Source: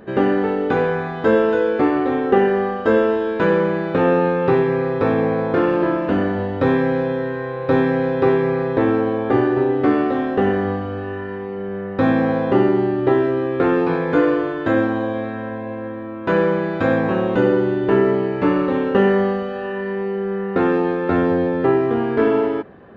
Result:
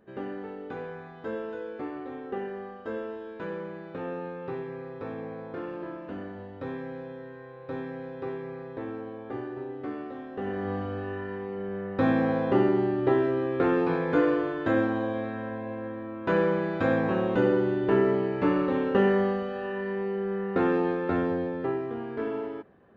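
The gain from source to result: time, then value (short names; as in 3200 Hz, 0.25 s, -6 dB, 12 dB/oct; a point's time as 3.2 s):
10.3 s -19 dB
10.8 s -7 dB
20.9 s -7 dB
21.94 s -15 dB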